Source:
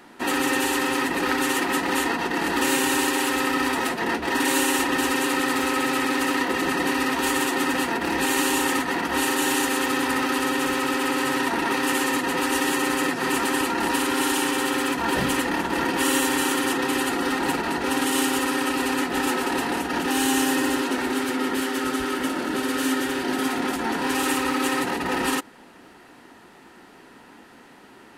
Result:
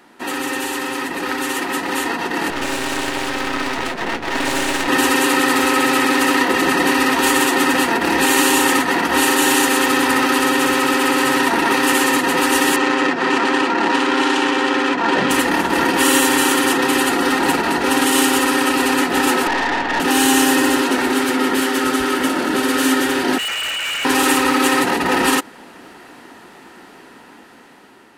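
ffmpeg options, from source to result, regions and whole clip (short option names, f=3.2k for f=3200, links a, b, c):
-filter_complex "[0:a]asettb=1/sr,asplit=3[a][b][c];[a]atrim=end=2.504[d];[b]atrim=start=2.5:end=4.88,asetpts=PTS-STARTPTS,afade=t=in:d=0.004:c=qsin,afade=t=out:st=2.376:d=0.004:c=qsin,adynamicsmooth=sensitivity=2.5:basefreq=5.1k,aeval=exprs='max(val(0),0)':c=same[e];[c]atrim=start=4.876[f];[d][e]acrossfade=d=0.004:c1=hsin:c2=qsin[g];[g][f]acrossfade=d=0.004:c1=qsin:c2=hsin,asettb=1/sr,asplit=3[h][i][j];[h]atrim=end=12.764[k];[i]atrim=start=12.76:end=15.31,asetpts=PTS-STARTPTS,afade=t=in:d=0.004:c=qsin,afade=t=out:st=2.546:d=0.004:c=qsin,adynamicsmooth=sensitivity=3:basefreq=2.3k,highpass=180,lowpass=7.6k[l];[j]atrim=start=15.306[m];[k][l]acrossfade=d=0.004:c1=hsin:c2=qsin[n];[n][m]acrossfade=d=0.004:c1=qsin:c2=hsin,asettb=1/sr,asplit=3[o][p][q];[o]atrim=end=19.474[r];[p]atrim=start=19.47:end=20,asetpts=PTS-STARTPTS,afade=t=in:d=0.004:c=qsin,afade=t=out:st=0.526:d=0.004:c=qsin,highpass=f=160:w=0.5412,highpass=f=160:w=1.3066,equalizer=f=620:t=q:w=4:g=5,equalizer=f=890:t=q:w=4:g=8,equalizer=f=1.8k:t=q:w=4:g=10,lowpass=f=4.6k:w=0.5412,lowpass=f=4.6k:w=1.3066,aeval=exprs='(tanh(14.1*val(0)+0.65)-tanh(0.65))/14.1':c=same[s];[q]atrim=start=19.996[t];[r][s]acrossfade=d=0.004:c1=hsin:c2=qsin[u];[u][t]acrossfade=d=0.004:c1=qsin:c2=hsin,asettb=1/sr,asplit=3[v][w][x];[v]atrim=end=23.384[y];[w]atrim=start=23.38:end=24.05,asetpts=PTS-STARTPTS,afade=t=in:d=0.004:c=qsin,afade=t=out:st=0.666:d=0.004:c=qsin,lowpass=f=2.7k:t=q:w=0.5098,lowpass=f=2.7k:t=q:w=0.6013,lowpass=f=2.7k:t=q:w=0.9,lowpass=f=2.7k:t=q:w=2.563,afreqshift=-3200,volume=29.5dB,asoftclip=hard,volume=-29.5dB[z];[x]atrim=start=24.046[aa];[y][z]acrossfade=d=0.004:c1=hsin:c2=qsin[ab];[ab][aa]acrossfade=d=0.004:c1=qsin:c2=hsin,lowshelf=f=130:g=-6,dynaudnorm=f=960:g=5:m=11.5dB"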